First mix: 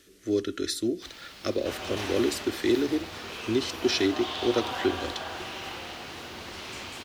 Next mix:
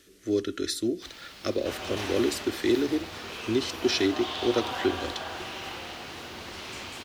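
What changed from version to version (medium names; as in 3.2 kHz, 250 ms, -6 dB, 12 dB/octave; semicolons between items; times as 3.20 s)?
no change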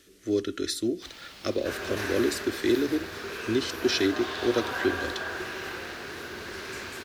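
second sound: add graphic EQ with 31 bands 400 Hz +9 dB, 800 Hz -6 dB, 1.6 kHz +11 dB, 3.15 kHz -8 dB, 12.5 kHz +8 dB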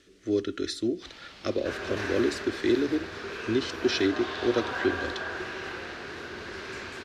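master: add distance through air 77 m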